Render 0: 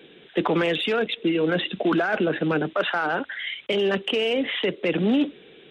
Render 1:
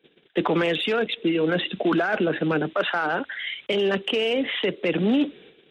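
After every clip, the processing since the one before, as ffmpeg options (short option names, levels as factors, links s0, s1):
-af "agate=range=0.112:threshold=0.00447:ratio=16:detection=peak"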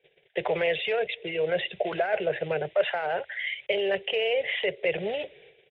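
-af "firequalizer=gain_entry='entry(130,0);entry(270,-30);entry(380,-3);entry(590,6);entry(1200,-13);entry(2000,5);entry(4000,-8);entry(8800,-29)':delay=0.05:min_phase=1,volume=0.708"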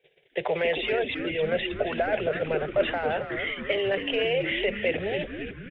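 -filter_complex "[0:a]asplit=8[s0][s1][s2][s3][s4][s5][s6][s7];[s1]adelay=272,afreqshift=-120,volume=0.398[s8];[s2]adelay=544,afreqshift=-240,volume=0.234[s9];[s3]adelay=816,afreqshift=-360,volume=0.138[s10];[s4]adelay=1088,afreqshift=-480,volume=0.0822[s11];[s5]adelay=1360,afreqshift=-600,volume=0.0484[s12];[s6]adelay=1632,afreqshift=-720,volume=0.0285[s13];[s7]adelay=1904,afreqshift=-840,volume=0.0168[s14];[s0][s8][s9][s10][s11][s12][s13][s14]amix=inputs=8:normalize=0"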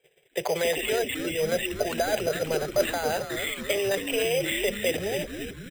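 -af "acrusher=samples=8:mix=1:aa=0.000001"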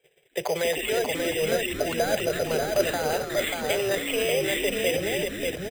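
-af "aecho=1:1:588:0.631"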